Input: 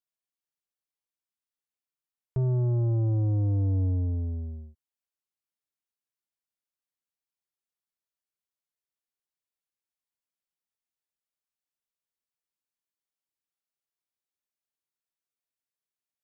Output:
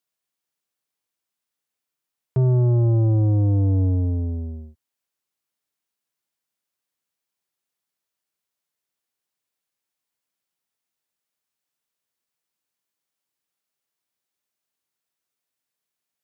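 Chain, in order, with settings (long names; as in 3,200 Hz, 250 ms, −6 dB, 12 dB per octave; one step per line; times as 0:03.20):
high-pass filter 89 Hz
level +8.5 dB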